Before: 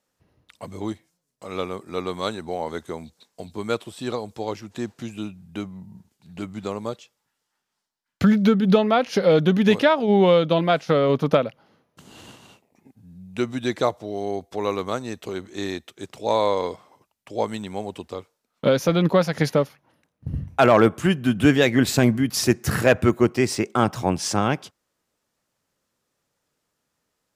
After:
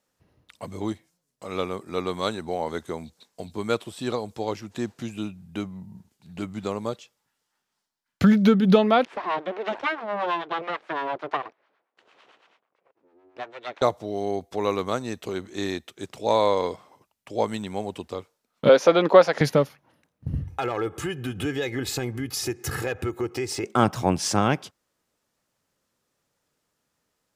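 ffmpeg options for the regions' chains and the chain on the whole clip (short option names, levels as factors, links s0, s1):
-filter_complex "[0:a]asettb=1/sr,asplit=3[s0][s1][s2];[s0]atrim=end=9.054[s3];[s1]atrim=start=9.05:end=13.82,asetpts=PTS-STARTPTS,afade=t=in:d=0.004:c=qsin,afade=t=out:st=4.766:d=0.004:c=qsin,aeval=exprs='abs(val(0))':c=same,highpass=440,lowpass=2500,acrossover=split=670[s4][s5];[s4]aeval=exprs='val(0)*(1-0.7/2+0.7/2*cos(2*PI*9*n/s))':c=same[s6];[s5]aeval=exprs='val(0)*(1-0.7/2-0.7/2*cos(2*PI*9*n/s))':c=same[s7];[s6][s7]amix=inputs=2:normalize=0[s8];[s2]atrim=start=13.816[s9];[s3][s8]acrossfade=d=0.004:c1=hsin:c2=qsin[s10];[s10][s9]acrossfade=d=0.004:c1=qsin:c2=hsin,asettb=1/sr,asplit=3[s11][s12][s13];[s11]atrim=end=18.694[s14];[s12]atrim=start=18.69:end=19.41,asetpts=PTS-STARTPTS,afade=t=in:d=0.004:c=qsin,afade=t=out:st=0.716:d=0.004:c=qsin,highpass=380,lowpass=7000,equalizer=f=640:w=0.4:g=7[s15];[s13]atrim=start=19.406[s16];[s14][s15]acrossfade=d=0.004:c1=hsin:c2=qsin[s17];[s17][s16]acrossfade=d=0.004:c1=qsin:c2=hsin,asettb=1/sr,asplit=3[s18][s19][s20];[s18]atrim=end=20.414[s21];[s19]atrim=start=20.41:end=23.64,asetpts=PTS-STARTPTS,afade=t=in:d=0.004:c=qsin,afade=t=out:st=3.226:d=0.004:c=qsin,aecho=1:1:2.4:0.68,atrim=end_sample=142443,acompressor=threshold=0.0398:ratio=3:attack=3.2:release=140:knee=1:detection=peak[s22];[s20]atrim=start=23.636[s23];[s21][s22]acrossfade=d=0.004:c1=hsin:c2=qsin[s24];[s24][s23]acrossfade=d=0.004:c1=qsin:c2=hsin"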